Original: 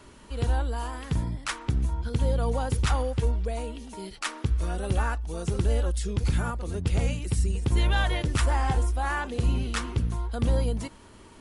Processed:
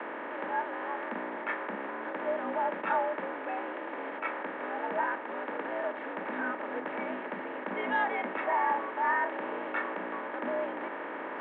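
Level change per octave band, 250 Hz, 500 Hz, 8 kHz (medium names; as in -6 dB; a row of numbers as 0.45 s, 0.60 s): -5.5 dB, -0.5 dB, under -40 dB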